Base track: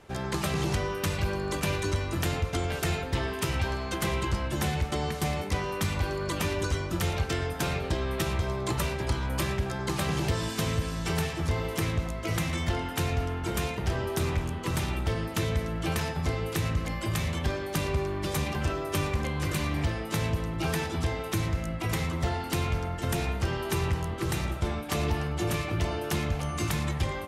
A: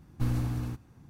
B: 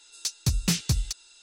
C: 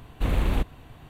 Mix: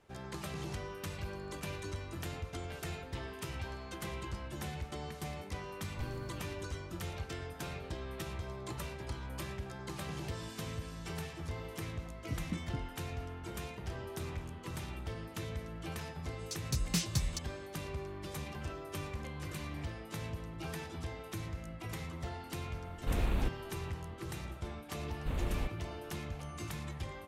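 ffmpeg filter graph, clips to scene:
-filter_complex "[2:a]asplit=2[s0][s1];[3:a]asplit=2[s2][s3];[0:a]volume=0.237[s4];[s0]lowpass=f=290:t=q:w=4.9[s5];[s1]dynaudnorm=f=140:g=5:m=2.51[s6];[1:a]atrim=end=1.09,asetpts=PTS-STARTPTS,volume=0.178,afade=t=in:d=0.004:c=hsin,afade=t=out:st=1.086:d=0.004:c=hsin,adelay=5780[s7];[s5]atrim=end=1.42,asetpts=PTS-STARTPTS,volume=0.158,afade=t=in:d=0.004:c=hsin,afade=t=out:st=1.416:d=0.004:c=hsin,adelay=11840[s8];[s6]atrim=end=1.42,asetpts=PTS-STARTPTS,volume=0.168,afade=t=in:d=0.004:c=hsin,afade=t=out:st=1.416:d=0.004:c=hsin,adelay=16260[s9];[s2]atrim=end=1.09,asetpts=PTS-STARTPTS,volume=0.376,afade=t=in:d=0.004:c=hsin,afade=t=out:st=1.086:d=0.004:c=hsin,adelay=22860[s10];[s3]atrim=end=1.09,asetpts=PTS-STARTPTS,volume=0.251,afade=t=in:d=0.004:c=hsin,afade=t=out:st=1.086:d=0.004:c=hsin,adelay=25050[s11];[s4][s7][s8][s9][s10][s11]amix=inputs=6:normalize=0"

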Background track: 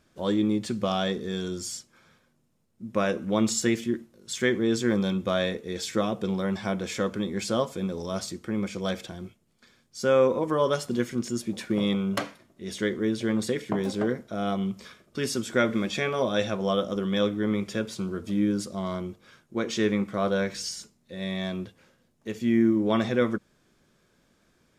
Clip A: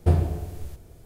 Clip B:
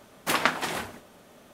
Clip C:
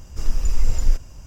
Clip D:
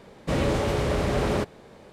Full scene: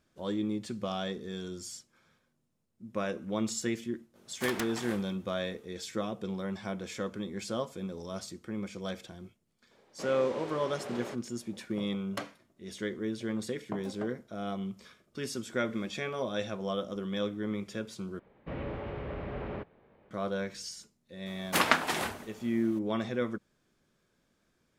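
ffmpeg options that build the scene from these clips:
-filter_complex "[2:a]asplit=2[s0][s1];[4:a]asplit=2[s2][s3];[0:a]volume=0.398[s4];[s0]aeval=exprs='(mod(5.01*val(0)+1,2)-1)/5.01':c=same[s5];[s2]highpass=310,lowpass=7000[s6];[s3]lowpass=f=2800:w=0.5412,lowpass=f=2800:w=1.3066[s7];[s4]asplit=2[s8][s9];[s8]atrim=end=18.194[s10];[s7]atrim=end=1.92,asetpts=PTS-STARTPTS,volume=0.211[s11];[s9]atrim=start=20.106[s12];[s5]atrim=end=1.53,asetpts=PTS-STARTPTS,volume=0.266,afade=t=in:d=0.02,afade=t=out:st=1.51:d=0.02,adelay=4140[s13];[s6]atrim=end=1.92,asetpts=PTS-STARTPTS,volume=0.2,afade=t=in:d=0.004:c=hsin,afade=t=out:st=1.916:d=0.004:c=hsin,adelay=9710[s14];[s1]atrim=end=1.53,asetpts=PTS-STARTPTS,volume=0.891,afade=t=in:d=0.004:c=hsin,afade=t=out:st=1.526:d=0.004:c=hsin,adelay=21260[s15];[s10][s11]acrossfade=d=0.004:c1=hsin:c2=hsin[s16];[s16][s12]acrossfade=d=0.004:c1=hsin:c2=hsin[s17];[s17][s13][s14][s15]amix=inputs=4:normalize=0"

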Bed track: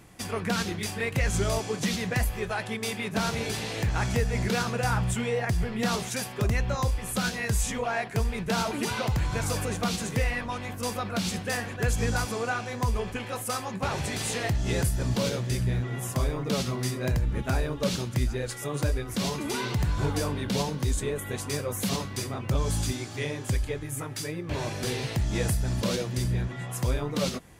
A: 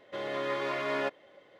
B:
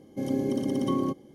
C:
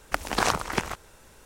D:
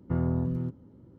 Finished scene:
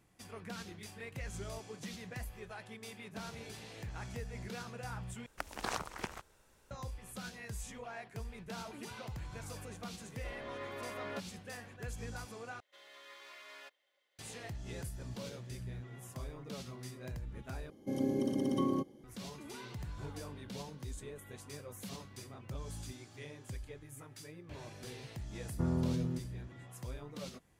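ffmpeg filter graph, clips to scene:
-filter_complex "[1:a]asplit=2[s0][s1];[0:a]volume=0.141[s2];[s1]aderivative[s3];[4:a]asplit=2[s4][s5];[s5]adelay=29,volume=0.211[s6];[s4][s6]amix=inputs=2:normalize=0[s7];[s2]asplit=4[s8][s9][s10][s11];[s8]atrim=end=5.264[s12];[3:a]atrim=end=1.45,asetpts=PTS-STARTPTS,volume=0.2[s13];[s9]atrim=start=6.706:end=12.604[s14];[s3]atrim=end=1.59,asetpts=PTS-STARTPTS,volume=0.501[s15];[s10]atrim=start=14.186:end=17.704[s16];[2:a]atrim=end=1.34,asetpts=PTS-STARTPTS,volume=0.531[s17];[s11]atrim=start=19.036[s18];[s0]atrim=end=1.59,asetpts=PTS-STARTPTS,volume=0.251,afade=t=in:d=0.004:c=hsin,afade=t=out:st=1.586:d=0.004:c=hsin,adelay=10110[s19];[s7]atrim=end=1.18,asetpts=PTS-STARTPTS,volume=0.562,afade=t=in:d=0.004:c=hsin,afade=t=out:st=1.176:d=0.004:c=hsin,adelay=25490[s20];[s12][s13]acrossfade=d=0.004:c1=hsin:c2=hsin[s21];[s21][s14]acrossfade=d=0.004:c1=hsin:c2=hsin[s22];[s22][s15]acrossfade=d=0.004:c1=hsin:c2=hsin[s23];[s23][s16]acrossfade=d=0.004:c1=hsin:c2=hsin[s24];[s24][s17]acrossfade=d=0.004:c1=hsin:c2=hsin[s25];[s25][s18]acrossfade=d=0.004:c1=hsin:c2=hsin[s26];[s26][s19][s20]amix=inputs=3:normalize=0"

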